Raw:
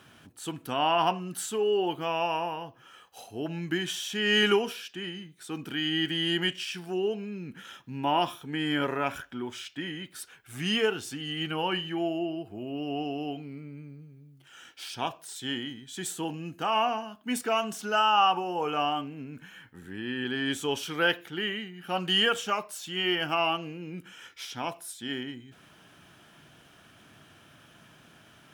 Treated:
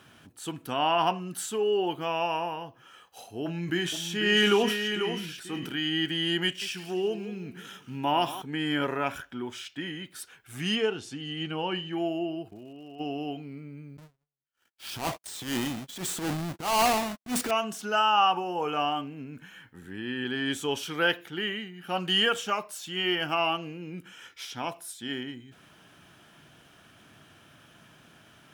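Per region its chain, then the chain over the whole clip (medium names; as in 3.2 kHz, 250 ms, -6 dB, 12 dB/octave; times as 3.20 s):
3.43–5.78 s: doubling 29 ms -12.5 dB + delay 492 ms -8 dB + decay stretcher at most 48 dB/s
6.44–8.42 s: treble shelf 7.2 kHz +6 dB + modulated delay 176 ms, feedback 41%, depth 139 cents, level -14 dB
10.75–11.93 s: Bessel low-pass 5.8 kHz + peaking EQ 1.5 kHz -4.5 dB 1.6 oct
12.48–12.99 s: level held to a coarse grid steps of 15 dB + crackle 200 per s -53 dBFS
13.97–17.51 s: square wave that keeps the level + gate -44 dBFS, range -52 dB + transient shaper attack -12 dB, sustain +5 dB
whole clip: none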